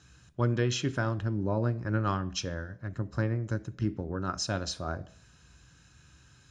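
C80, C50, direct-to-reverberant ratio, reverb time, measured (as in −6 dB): 23.0 dB, 20.0 dB, 11.0 dB, 0.55 s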